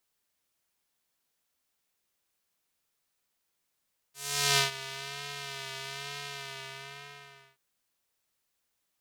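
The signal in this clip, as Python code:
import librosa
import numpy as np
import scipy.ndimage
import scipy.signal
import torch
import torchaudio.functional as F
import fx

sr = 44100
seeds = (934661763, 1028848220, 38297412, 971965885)

y = fx.sub_patch_vibrato(sr, seeds[0], note=49, wave='square', wave2='saw', interval_st=0, detune_cents=16, level2_db=-17, sub_db=-15.0, noise_db=-14.5, kind='bandpass', cutoff_hz=2200.0, q=0.96, env_oct=2.0, env_decay_s=0.53, env_sustain_pct=35, attack_ms=437.0, decay_s=0.13, sustain_db=-17.0, release_s=1.39, note_s=2.04, lfo_hz=1.1, vibrato_cents=47)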